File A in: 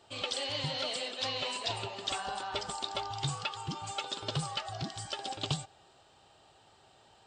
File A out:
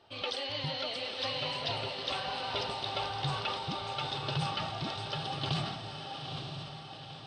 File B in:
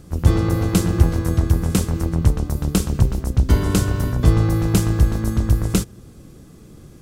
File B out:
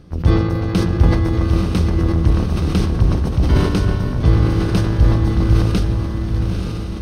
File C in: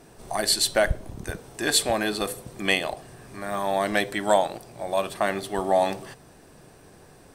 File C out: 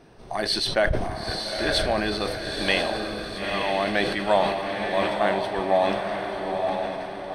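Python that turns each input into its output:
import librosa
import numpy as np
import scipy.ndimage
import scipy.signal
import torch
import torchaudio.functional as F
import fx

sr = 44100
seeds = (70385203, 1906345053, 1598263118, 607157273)

y = scipy.signal.savgol_filter(x, 15, 4, mode='constant')
y = fx.echo_diffused(y, sr, ms=919, feedback_pct=51, wet_db=-3.5)
y = fx.sustainer(y, sr, db_per_s=47.0)
y = y * librosa.db_to_amplitude(-1.0)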